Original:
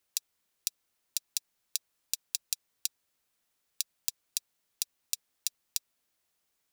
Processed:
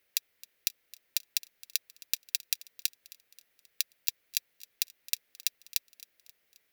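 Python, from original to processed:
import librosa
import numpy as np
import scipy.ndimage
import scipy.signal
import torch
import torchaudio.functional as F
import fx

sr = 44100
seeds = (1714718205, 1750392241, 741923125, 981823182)

y = fx.graphic_eq_10(x, sr, hz=(500, 1000, 2000, 8000, 16000), db=(7, -6, 10, -8, 4))
y = fx.echo_feedback(y, sr, ms=266, feedback_pct=52, wet_db=-20.0)
y = y * librosa.db_to_amplitude(3.0)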